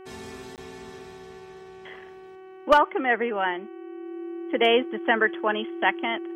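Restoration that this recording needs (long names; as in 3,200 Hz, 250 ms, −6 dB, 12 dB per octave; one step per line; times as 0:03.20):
clipped peaks rebuilt −8.5 dBFS
hum removal 377.1 Hz, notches 8
notch filter 340 Hz, Q 30
repair the gap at 0:00.56, 18 ms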